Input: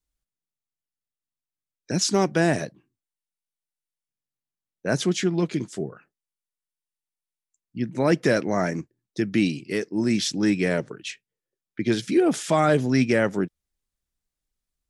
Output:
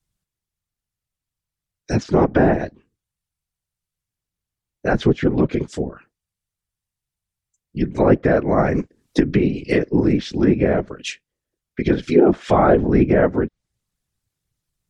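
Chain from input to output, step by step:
random phases in short frames
treble cut that deepens with the level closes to 1,300 Hz, closed at −18.5 dBFS
0:08.58–0:10.13: multiband upward and downward compressor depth 100%
level +6 dB

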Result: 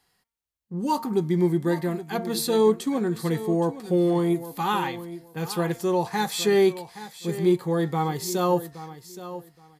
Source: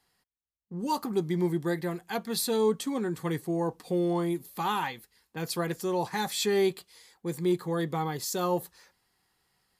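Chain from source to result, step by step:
hum removal 229.4 Hz, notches 10
harmonic and percussive parts rebalanced harmonic +6 dB
on a send: repeating echo 821 ms, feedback 19%, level −14 dB

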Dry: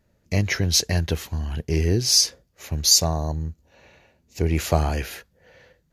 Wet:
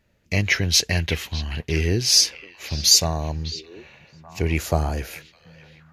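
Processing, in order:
parametric band 2,600 Hz +9 dB 1.3 octaves, from 0:04.58 −5 dB
echo through a band-pass that steps 609 ms, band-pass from 2,900 Hz, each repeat −1.4 octaves, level −10 dB
level −1 dB

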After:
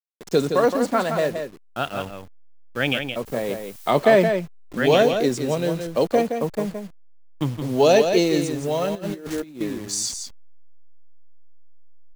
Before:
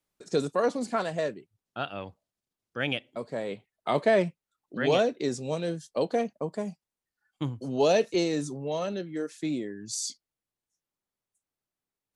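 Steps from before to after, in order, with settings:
hold until the input has moved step −43 dBFS
0:03.25–0:03.90: background noise blue −54 dBFS
on a send: single-tap delay 169 ms −7 dB
0:08.95–0:09.61: on the sum: compressor whose output falls as the input rises −37 dBFS, ratio −0.5
level +7 dB

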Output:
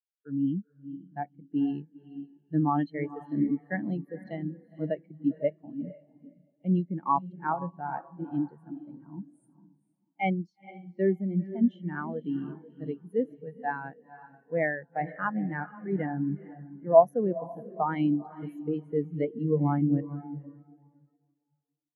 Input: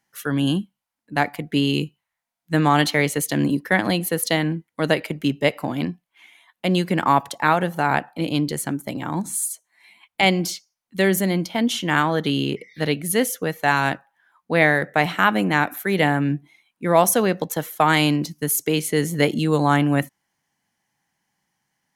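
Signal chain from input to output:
high-shelf EQ 7,900 Hz −10.5 dB
feedback delay with all-pass diffusion 474 ms, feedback 49%, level −5.5 dB
every bin expanded away from the loudest bin 2.5 to 1
level −4 dB

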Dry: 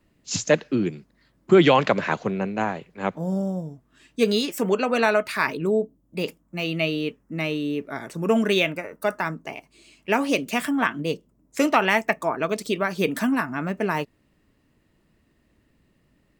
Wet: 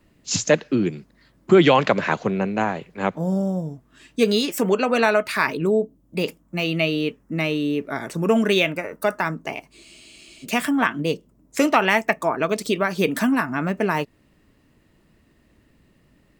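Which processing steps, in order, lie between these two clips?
in parallel at −1 dB: downward compressor, threshold −28 dBFS, peak gain reduction 16.5 dB
on the sum: frozen spectrum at 0:09.86, 0.57 s

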